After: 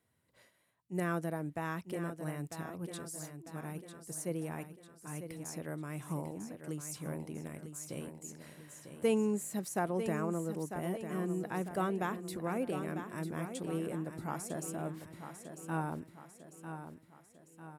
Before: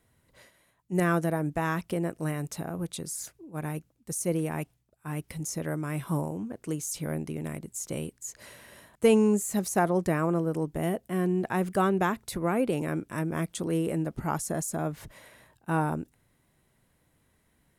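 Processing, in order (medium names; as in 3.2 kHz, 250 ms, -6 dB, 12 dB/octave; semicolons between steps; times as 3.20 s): high-pass 91 Hz; band-stop 6.4 kHz, Q 20; on a send: feedback delay 948 ms, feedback 48%, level -9 dB; on the sum: trim -9 dB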